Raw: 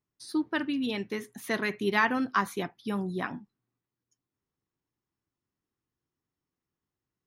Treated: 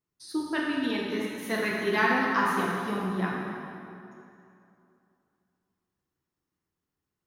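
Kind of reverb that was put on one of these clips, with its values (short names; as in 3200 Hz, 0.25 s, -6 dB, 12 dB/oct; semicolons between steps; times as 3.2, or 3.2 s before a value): plate-style reverb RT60 2.7 s, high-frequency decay 0.7×, DRR -4 dB; gain -2.5 dB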